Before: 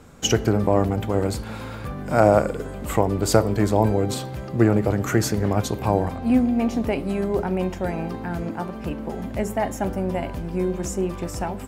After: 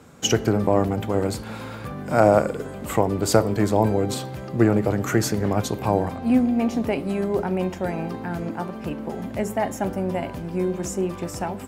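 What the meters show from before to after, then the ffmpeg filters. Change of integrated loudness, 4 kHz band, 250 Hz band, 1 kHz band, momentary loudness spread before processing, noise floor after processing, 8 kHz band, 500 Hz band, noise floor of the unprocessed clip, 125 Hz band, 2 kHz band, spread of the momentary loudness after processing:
-0.5 dB, 0.0 dB, 0.0 dB, 0.0 dB, 11 LU, -35 dBFS, 0.0 dB, 0.0 dB, -34 dBFS, -2.0 dB, 0.0 dB, 11 LU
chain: -af "highpass=95"

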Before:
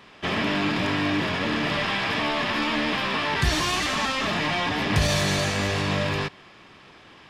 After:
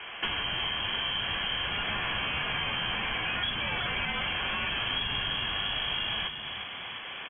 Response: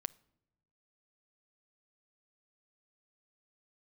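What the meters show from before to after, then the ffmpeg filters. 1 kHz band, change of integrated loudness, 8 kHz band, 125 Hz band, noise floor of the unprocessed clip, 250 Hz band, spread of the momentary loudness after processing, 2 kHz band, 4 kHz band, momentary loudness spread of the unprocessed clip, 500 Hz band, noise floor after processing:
-8.5 dB, -5.5 dB, under -40 dB, -13.5 dB, -50 dBFS, -17.0 dB, 3 LU, -5.0 dB, -0.5 dB, 3 LU, -14.0 dB, -40 dBFS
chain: -filter_complex "[0:a]lowpass=f=2.9k:t=q:w=0.5098,lowpass=f=2.9k:t=q:w=0.6013,lowpass=f=2.9k:t=q:w=0.9,lowpass=f=2.9k:t=q:w=2.563,afreqshift=-3400,acrossover=split=170[a][b];[b]acompressor=threshold=-39dB:ratio=10[c];[a][c]amix=inputs=2:normalize=0,asplit=7[d][e][f][g][h][i][j];[e]adelay=352,afreqshift=31,volume=-8.5dB[k];[f]adelay=704,afreqshift=62,volume=-14dB[l];[g]adelay=1056,afreqshift=93,volume=-19.5dB[m];[h]adelay=1408,afreqshift=124,volume=-25dB[n];[i]adelay=1760,afreqshift=155,volume=-30.6dB[o];[j]adelay=2112,afreqshift=186,volume=-36.1dB[p];[d][k][l][m][n][o][p]amix=inputs=7:normalize=0,volume=9dB"

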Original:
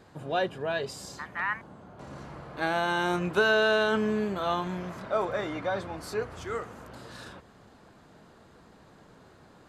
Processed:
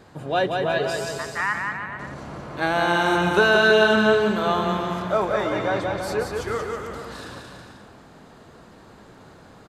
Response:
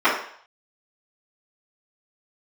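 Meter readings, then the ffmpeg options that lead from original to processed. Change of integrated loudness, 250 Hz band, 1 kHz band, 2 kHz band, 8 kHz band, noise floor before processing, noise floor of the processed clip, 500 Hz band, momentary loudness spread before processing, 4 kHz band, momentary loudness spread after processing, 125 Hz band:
+7.5 dB, +7.0 dB, +7.5 dB, +8.0 dB, +7.5 dB, -56 dBFS, -48 dBFS, +7.5 dB, 21 LU, +7.5 dB, 19 LU, +7.5 dB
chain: -af "aecho=1:1:180|324|439.2|531.4|605.1:0.631|0.398|0.251|0.158|0.1,volume=5.5dB"

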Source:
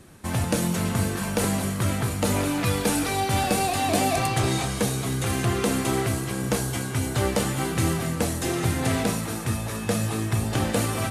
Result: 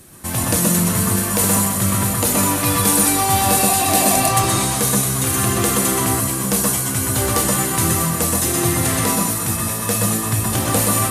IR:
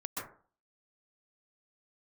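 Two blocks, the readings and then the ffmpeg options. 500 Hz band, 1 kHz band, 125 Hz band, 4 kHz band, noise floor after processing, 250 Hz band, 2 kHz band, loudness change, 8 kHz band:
+4.0 dB, +7.5 dB, +4.0 dB, +7.5 dB, -23 dBFS, +5.0 dB, +5.5 dB, +8.5 dB, +14.5 dB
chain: -filter_complex "[0:a]aemphasis=mode=production:type=50fm[a];[1:a]atrim=start_sample=2205,afade=t=out:st=0.18:d=0.01,atrim=end_sample=8379[b];[a][b]afir=irnorm=-1:irlink=0,volume=6dB"

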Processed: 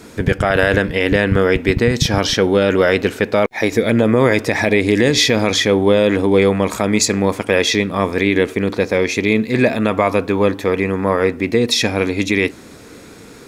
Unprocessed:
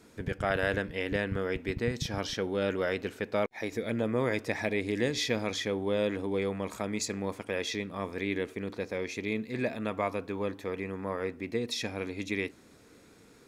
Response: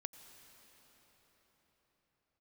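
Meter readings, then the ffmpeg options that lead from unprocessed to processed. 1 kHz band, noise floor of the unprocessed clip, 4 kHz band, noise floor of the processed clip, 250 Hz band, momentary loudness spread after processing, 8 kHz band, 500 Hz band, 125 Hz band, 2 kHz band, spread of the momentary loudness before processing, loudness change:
+16.0 dB, -57 dBFS, +17.5 dB, -39 dBFS, +17.0 dB, 4 LU, +18.0 dB, +16.5 dB, +17.0 dB, +16.5 dB, 6 LU, +17.0 dB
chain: -af "alimiter=level_in=19dB:limit=-1dB:release=50:level=0:latency=1,volume=-1dB"

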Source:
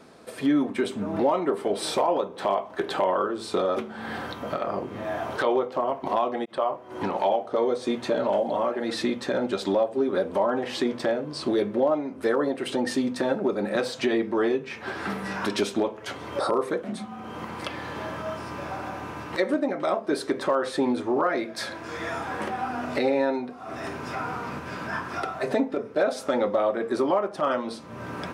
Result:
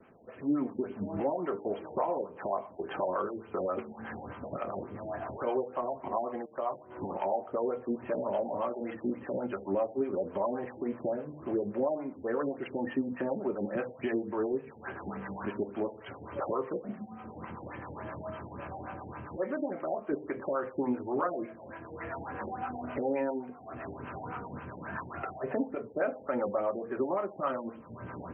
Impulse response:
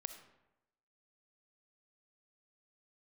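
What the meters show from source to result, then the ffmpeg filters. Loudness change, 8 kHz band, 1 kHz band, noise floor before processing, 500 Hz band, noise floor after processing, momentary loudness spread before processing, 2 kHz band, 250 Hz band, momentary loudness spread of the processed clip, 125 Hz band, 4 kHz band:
-8.0 dB, under -35 dB, -8.0 dB, -41 dBFS, -8.0 dB, -50 dBFS, 10 LU, -11.0 dB, -7.5 dB, 11 LU, -5.0 dB, under -20 dB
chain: -filter_complex "[0:a]acrossover=split=120|810|5500[a][b][c][d];[a]acontrast=23[e];[e][b][c][d]amix=inputs=4:normalize=0,acrossover=split=510[f][g];[f]aeval=exprs='val(0)*(1-0.7/2+0.7/2*cos(2*PI*7.7*n/s))':c=same[h];[g]aeval=exprs='val(0)*(1-0.7/2-0.7/2*cos(2*PI*7.7*n/s))':c=same[i];[h][i]amix=inputs=2:normalize=0,bandreject=f=151.9:t=h:w=4,bandreject=f=303.8:t=h:w=4,bandreject=f=455.7:t=h:w=4,bandreject=f=607.6:t=h:w=4,bandreject=f=759.5:t=h:w=4,bandreject=f=911.4:t=h:w=4,bandreject=f=1.0633k:t=h:w=4,bandreject=f=1.2152k:t=h:w=4,bandreject=f=1.3671k:t=h:w=4,bandreject=f=1.519k:t=h:w=4,bandreject=f=1.6709k:t=h:w=4,bandreject=f=1.8228k:t=h:w=4,bandreject=f=1.9747k:t=h:w=4,bandreject=f=2.1266k:t=h:w=4,bandreject=f=2.2785k:t=h:w=4,bandreject=f=2.4304k:t=h:w=4,bandreject=f=2.5823k:t=h:w=4,bandreject=f=2.7342k:t=h:w=4,bandreject=f=2.8861k:t=h:w=4,bandreject=f=3.038k:t=h:w=4,bandreject=f=3.1899k:t=h:w=4,bandreject=f=3.3418k:t=h:w=4,afftfilt=real='re*lt(b*sr/1024,890*pow(3300/890,0.5+0.5*sin(2*PI*3.5*pts/sr)))':imag='im*lt(b*sr/1024,890*pow(3300/890,0.5+0.5*sin(2*PI*3.5*pts/sr)))':win_size=1024:overlap=0.75,volume=-4dB"

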